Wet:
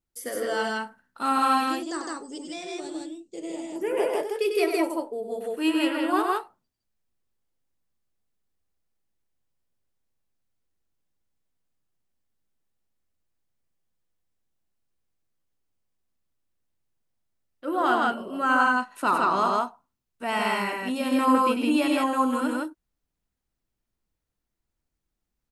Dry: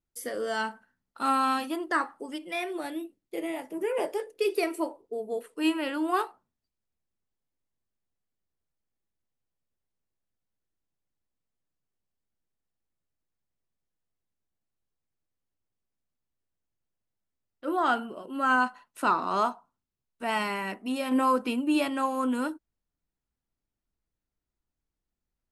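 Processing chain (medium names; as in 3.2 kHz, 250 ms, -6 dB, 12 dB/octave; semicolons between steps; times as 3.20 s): 1.67–3.76 s: FFT filter 170 Hz 0 dB, 2 kHz -14 dB, 7.7 kHz +12 dB, 11 kHz -26 dB; loudspeakers at several distances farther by 33 m -6 dB, 55 m -1 dB; trim +1 dB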